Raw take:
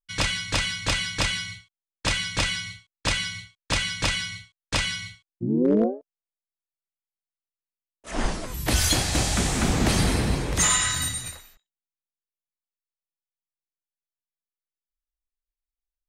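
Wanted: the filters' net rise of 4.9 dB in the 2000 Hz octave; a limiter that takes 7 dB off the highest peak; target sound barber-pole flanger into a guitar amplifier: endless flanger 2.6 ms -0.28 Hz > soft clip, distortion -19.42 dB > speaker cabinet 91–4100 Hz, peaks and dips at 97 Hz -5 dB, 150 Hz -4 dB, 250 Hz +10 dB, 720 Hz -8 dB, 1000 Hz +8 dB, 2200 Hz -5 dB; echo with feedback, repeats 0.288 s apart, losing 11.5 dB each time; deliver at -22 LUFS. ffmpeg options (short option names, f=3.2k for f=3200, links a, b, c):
-filter_complex "[0:a]equalizer=f=2k:t=o:g=8.5,alimiter=limit=-15dB:level=0:latency=1,aecho=1:1:288|576|864:0.266|0.0718|0.0194,asplit=2[a][b];[b]adelay=2.6,afreqshift=-0.28[c];[a][c]amix=inputs=2:normalize=1,asoftclip=threshold=-19.5dB,highpass=91,equalizer=f=97:t=q:w=4:g=-5,equalizer=f=150:t=q:w=4:g=-4,equalizer=f=250:t=q:w=4:g=10,equalizer=f=720:t=q:w=4:g=-8,equalizer=f=1k:t=q:w=4:g=8,equalizer=f=2.2k:t=q:w=4:g=-5,lowpass=f=4.1k:w=0.5412,lowpass=f=4.1k:w=1.3066,volume=7dB"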